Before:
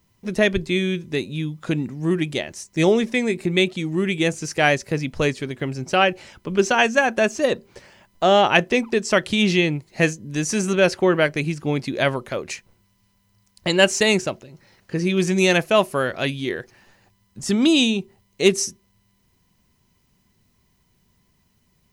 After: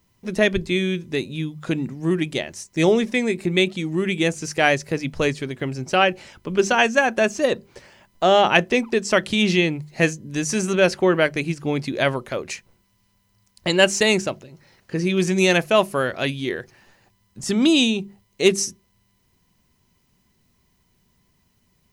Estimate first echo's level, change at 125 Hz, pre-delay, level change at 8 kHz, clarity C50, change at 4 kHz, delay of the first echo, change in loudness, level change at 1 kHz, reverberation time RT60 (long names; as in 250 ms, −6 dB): no echo audible, −1.0 dB, no reverb audible, 0.0 dB, no reverb audible, 0.0 dB, no echo audible, 0.0 dB, 0.0 dB, no reverb audible